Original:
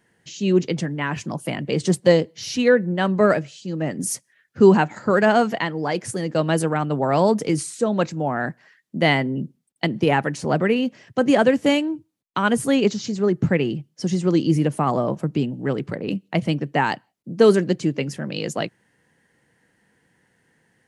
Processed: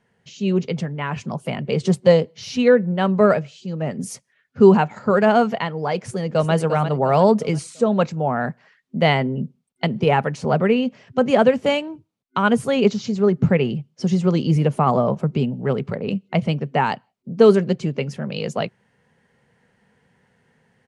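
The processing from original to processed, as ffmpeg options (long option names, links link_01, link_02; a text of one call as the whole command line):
ffmpeg -i in.wav -filter_complex "[0:a]asplit=2[link_01][link_02];[link_02]afade=type=in:start_time=5.97:duration=0.01,afade=type=out:start_time=6.53:duration=0.01,aecho=0:1:350|700|1050|1400:0.375837|0.150335|0.060134|0.0240536[link_03];[link_01][link_03]amix=inputs=2:normalize=0,superequalizer=6b=0.316:11b=0.631,dynaudnorm=framelen=150:gausssize=17:maxgain=4dB,aemphasis=mode=reproduction:type=50fm" out.wav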